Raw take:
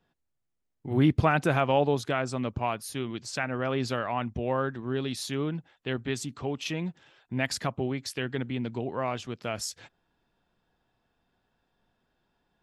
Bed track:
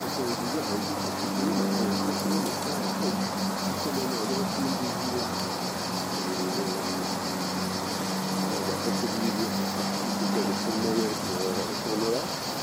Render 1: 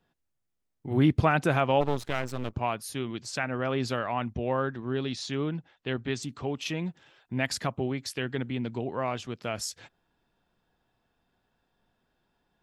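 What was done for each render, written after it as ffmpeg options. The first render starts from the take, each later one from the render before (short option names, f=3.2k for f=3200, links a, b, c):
-filter_complex "[0:a]asplit=3[a][b][c];[a]afade=t=out:st=1.8:d=0.02[d];[b]aeval=exprs='max(val(0),0)':c=same,afade=t=in:st=1.8:d=0.02,afade=t=out:st=2.53:d=0.02[e];[c]afade=t=in:st=2.53:d=0.02[f];[d][e][f]amix=inputs=3:normalize=0,asettb=1/sr,asplit=3[g][h][i];[g]atrim=end=4.334[j];[h]atrim=start=4.33:end=6.23,asetpts=PTS-STARTPTS,afade=t=in:d=0.004:c=qsin,afade=t=out:st=1.896:d=0.004:c=qsin,lowpass=f=6.9k:w=0.5412,lowpass=f=6.9k:w=1.3066[k];[i]atrim=start=6.226[l];[j][k]acrossfade=d=0.004:c1=hsin:c2=qsin[m];[m][l]acrossfade=d=0.004:c1=qsin:c2=hsin"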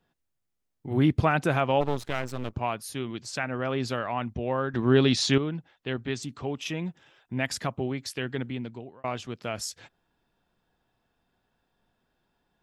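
-filter_complex "[0:a]asettb=1/sr,asplit=3[a][b][c];[a]atrim=end=6.604[d];[b]atrim=start=6.6:end=7.59,asetpts=PTS-STARTPTS,afade=t=in:d=0.004:c=qsin,afade=t=out:st=0.986:d=0.004:c=qsin,bandreject=f=4.3k:w=8.6[e];[c]atrim=start=7.586[f];[d][e]acrossfade=d=0.004:c1=hsin:c2=qsin[g];[g][f]acrossfade=d=0.004:c1=qsin:c2=hsin,asplit=4[h][i][j][k];[h]atrim=end=4.742[l];[i]atrim=start=4.738:end=5.382,asetpts=PTS-STARTPTS,volume=10.5dB[m];[j]atrim=start=5.378:end=9.04,asetpts=PTS-STARTPTS,afade=t=out:st=3.072:d=0.59[n];[k]atrim=start=9.04,asetpts=PTS-STARTPTS,afade=t=in:d=0.004:c=hsin[o];[l][m]acrossfade=d=0.004:c1=hsin:c2=hsin[p];[n][o]concat=n=2:v=0:a=1[q];[p][q]acrossfade=d=0.004:c1=hsin:c2=hsin"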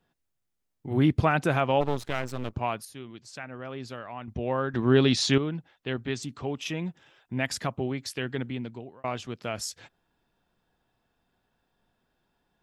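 -filter_complex "[0:a]asplit=3[a][b][c];[a]atrim=end=2.852[d];[b]atrim=start=2.848:end=4.282,asetpts=PTS-STARTPTS,volume=-9dB[e];[c]atrim=start=4.278[f];[d][e]acrossfade=d=0.004:c1=hsin:c2=hsin[g];[g][f]acrossfade=d=0.004:c1=hsin:c2=hsin"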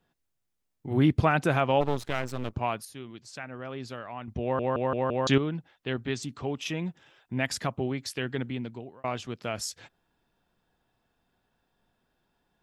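-filter_complex "[0:a]asplit=6[a][b][c][d][e][f];[a]atrim=end=4.592[g];[b]atrim=start=4.418:end=4.592[h];[c]atrim=start=4.418:end=4.592[i];[d]atrim=start=4.418:end=4.592[j];[e]atrim=start=4.418:end=4.592[k];[f]atrim=start=5.268[l];[g][h]acrossfade=d=0.004:c1=hsin:c2=hsin[m];[m][i]acrossfade=d=0.004:c1=hsin:c2=hsin[n];[n][j]acrossfade=d=0.004:c1=hsin:c2=hsin[o];[o][k]acrossfade=d=0.004:c1=hsin:c2=hsin[p];[p][l]acrossfade=d=0.004:c1=hsin:c2=hsin"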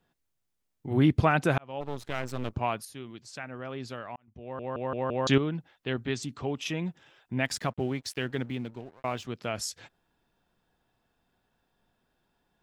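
-filter_complex "[0:a]asettb=1/sr,asplit=3[a][b][c];[a]atrim=end=7.454[d];[b]atrim=start=7.45:end=9.25,asetpts=PTS-STARTPTS,afade=t=in:d=0.004:c=qsin,afade=t=out:st=1.796:d=0.004:c=qsin,aeval=exprs='sgn(val(0))*max(abs(val(0))-0.002,0)':c=same[e];[c]atrim=start=9.246[f];[d][e]acrossfade=d=0.004:c1=hsin:c2=qsin[g];[g][f]acrossfade=d=0.004:c1=qsin:c2=hsin,asplit=3[h][i][j];[h]atrim=end=1.58,asetpts=PTS-STARTPTS,afade=t=out:st=1.576:d=0.004:c=hsin[k];[i]atrim=start=1.58:end=4.16,asetpts=PTS-STARTPTS,afade=t=in:d=0.8,afade=t=out:st=2.576:d=0.004:c=hsin[l];[j]atrim=start=4.16,asetpts=PTS-STARTPTS,afade=t=in:d=1.2[m];[k][l][m]concat=n=3:v=0:a=1"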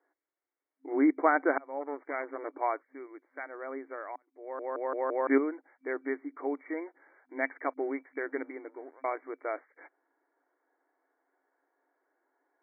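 -af "afftfilt=real='re*between(b*sr/4096,260,2300)':imag='im*between(b*sr/4096,260,2300)':win_size=4096:overlap=0.75"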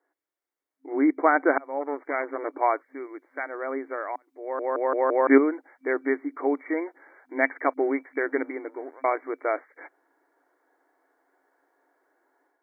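-af "dynaudnorm=f=830:g=3:m=8.5dB"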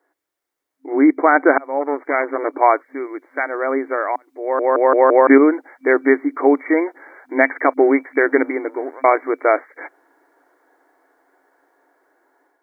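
-af "dynaudnorm=f=800:g=7:m=4dB,alimiter=level_in=8.5dB:limit=-1dB:release=50:level=0:latency=1"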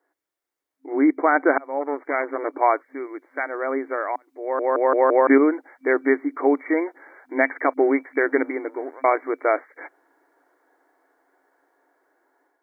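-af "volume=-5dB"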